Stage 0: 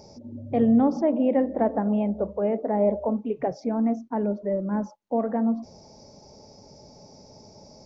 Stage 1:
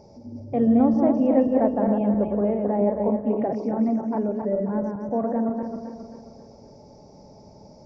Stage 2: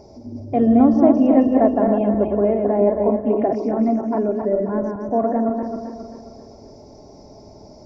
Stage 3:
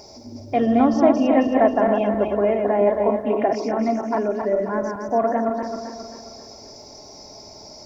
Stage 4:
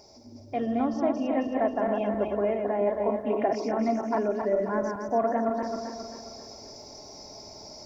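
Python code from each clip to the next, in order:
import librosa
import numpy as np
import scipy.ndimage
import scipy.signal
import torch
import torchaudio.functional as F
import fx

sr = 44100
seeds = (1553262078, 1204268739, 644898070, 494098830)

y1 = fx.reverse_delay_fb(x, sr, ms=134, feedback_pct=68, wet_db=-4.0)
y1 = fx.high_shelf(y1, sr, hz=2500.0, db=-12.0)
y2 = y1 + 0.48 * np.pad(y1, (int(2.9 * sr / 1000.0), 0))[:len(y1)]
y2 = y2 * 10.0 ** (5.0 / 20.0)
y3 = fx.tilt_shelf(y2, sr, db=-10.0, hz=970.0)
y3 = y3 * 10.0 ** (4.0 / 20.0)
y4 = fx.rider(y3, sr, range_db=4, speed_s=0.5)
y4 = y4 * 10.0 ** (-7.0 / 20.0)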